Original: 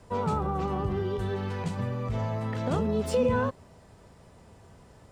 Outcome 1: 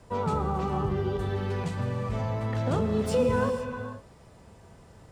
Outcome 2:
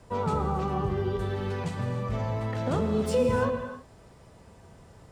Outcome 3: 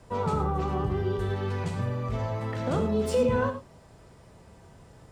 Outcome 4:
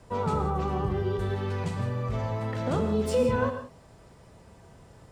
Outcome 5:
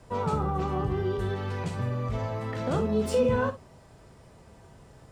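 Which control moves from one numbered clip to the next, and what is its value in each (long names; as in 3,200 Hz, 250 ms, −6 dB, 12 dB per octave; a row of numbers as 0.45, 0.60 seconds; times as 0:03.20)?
reverb whose tail is shaped and stops, gate: 530, 340, 130, 200, 80 milliseconds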